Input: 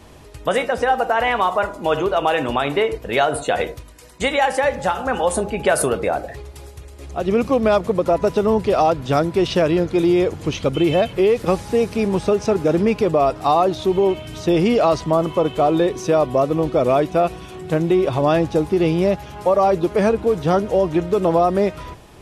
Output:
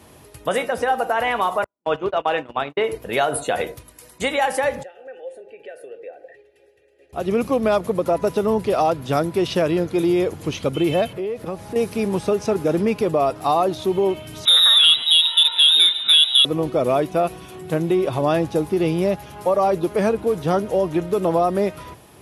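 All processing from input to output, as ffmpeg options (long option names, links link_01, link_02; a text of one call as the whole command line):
ffmpeg -i in.wav -filter_complex "[0:a]asettb=1/sr,asplit=3[link_01][link_02][link_03];[link_01]atrim=end=1.644[link_04];[link_02]atrim=start=1.64:end=2.84,asetpts=PTS-STARTPTS,afade=type=in:duration=0.004:curve=qsin,afade=type=out:start_time=1.196:duration=0.004:curve=qsin,agate=range=-53dB:threshold=-21dB:ratio=16:release=100:detection=peak,lowpass=4500[link_05];[link_03]atrim=start=2.836[link_06];[link_04][link_05]acrossfade=duration=0.004:curve1=hsin:curve2=qsin[link_07];[link_07][link_06]acrossfade=duration=0.004:curve1=qsin:curve2=hsin,asettb=1/sr,asplit=3[link_08][link_09][link_10];[link_08]atrim=end=4.834[link_11];[link_09]atrim=start=4.83:end=7.13,asetpts=PTS-STARTPTS,afade=type=in:duration=0.004:curve=qsin,afade=type=out:start_time=2.296:duration=0.004:curve=qsin,aecho=1:1:2.6:0.5,atrim=end_sample=101430,acompressor=threshold=-27dB:ratio=2:attack=3.2:release=140:knee=1:detection=peak,asplit=3[link_12][link_13][link_14];[link_12]bandpass=frequency=530:width_type=q:width=8,volume=0dB[link_15];[link_13]bandpass=frequency=1840:width_type=q:width=8,volume=-6dB[link_16];[link_14]bandpass=frequency=2480:width_type=q:width=8,volume=-9dB[link_17];[link_15][link_16][link_17]amix=inputs=3:normalize=0[link_18];[link_10]atrim=start=7.126[link_19];[link_11][link_18]acrossfade=duration=0.004:curve1=hsin:curve2=qsin[link_20];[link_20][link_19]acrossfade=duration=0.004:curve1=qsin:curve2=hsin,asettb=1/sr,asplit=3[link_21][link_22][link_23];[link_21]atrim=end=11.134[link_24];[link_22]atrim=start=11.13:end=11.76,asetpts=PTS-STARTPTS,afade=type=in:duration=0.004:curve=qsin,afade=type=out:start_time=0.626:duration=0.004:curve=qsin,highshelf=frequency=3400:gain=-9,acompressor=threshold=-27dB:ratio=2:attack=3.2:release=140:knee=1:detection=peak,aeval=exprs='val(0)+0.00708*sin(2*PI*640*n/s)':channel_layout=same[link_25];[link_23]atrim=start=11.756[link_26];[link_24][link_25]acrossfade=duration=0.004:curve1=hsin:curve2=qsin[link_27];[link_27][link_26]acrossfade=duration=0.004:curve1=qsin:curve2=hsin,asettb=1/sr,asplit=3[link_28][link_29][link_30];[link_28]atrim=end=14.454[link_31];[link_29]atrim=start=14.45:end=16.45,asetpts=PTS-STARTPTS,afade=type=in:duration=0.004:curve=qsin,afade=type=out:start_time=1.996:duration=0.004:curve=qsin,lowpass=frequency=3400:width_type=q:width=0.5098,lowpass=frequency=3400:width_type=q:width=0.6013,lowpass=frequency=3400:width_type=q:width=0.9,lowpass=frequency=3400:width_type=q:width=2.563,afreqshift=-4000,acontrast=30,aecho=1:1:146:0.126,atrim=end_sample=88200[link_32];[link_30]atrim=start=16.446[link_33];[link_31][link_32]acrossfade=duration=0.004:curve1=hsin:curve2=qsin[link_34];[link_34][link_33]acrossfade=duration=0.004:curve1=qsin:curve2=hsin,highpass=85,equalizer=frequency=11000:width_type=o:width=0.3:gain=13,volume=-2.5dB" out.wav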